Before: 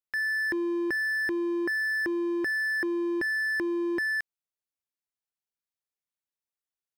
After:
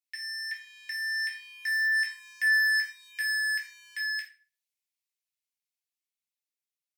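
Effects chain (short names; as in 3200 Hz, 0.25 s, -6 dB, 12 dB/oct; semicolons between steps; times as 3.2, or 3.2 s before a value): Doppler pass-by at 2.57, 6 m/s, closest 7.1 m; elliptic high-pass 2100 Hz, stop band 80 dB; shoebox room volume 380 m³, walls furnished, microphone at 3.3 m; gain +7 dB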